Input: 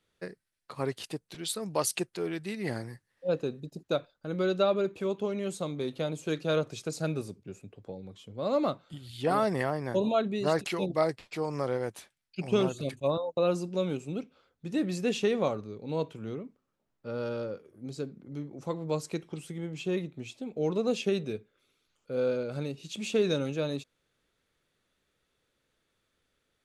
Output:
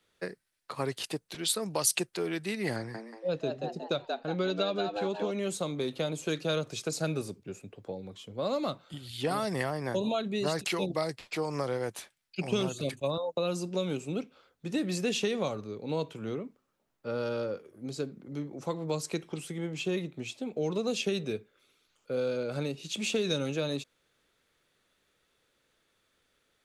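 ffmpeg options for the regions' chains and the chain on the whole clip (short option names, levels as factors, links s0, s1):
-filter_complex "[0:a]asettb=1/sr,asplit=3[s0][s1][s2];[s0]atrim=end=2.764[s3];[s1]atrim=start=2.76:end=5.31,asetpts=PTS-STARTPTS,afade=t=in:d=0.004:c=qsin,afade=t=out:st=2.546:d=0.004:c=qsin,lowpass=5900,asplit=5[s4][s5][s6][s7][s8];[s5]adelay=182,afreqshift=110,volume=0.447[s9];[s6]adelay=364,afreqshift=220,volume=0.16[s10];[s7]adelay=546,afreqshift=330,volume=0.0582[s11];[s8]adelay=728,afreqshift=440,volume=0.0209[s12];[s4][s9][s10][s11][s12]amix=inputs=5:normalize=0,atrim=end_sample=112455[s13];[s2]atrim=start=5.306[s14];[s3][s13]acrossfade=d=0.004:c1=hsin:c2=qsin[s15];[s15][s14]acrossfade=d=0.004:c1=qsin:c2=hsin,lowshelf=f=260:g=-6.5,acrossover=split=190|3000[s16][s17][s18];[s17]acompressor=threshold=0.02:ratio=6[s19];[s16][s19][s18]amix=inputs=3:normalize=0,volume=1.78"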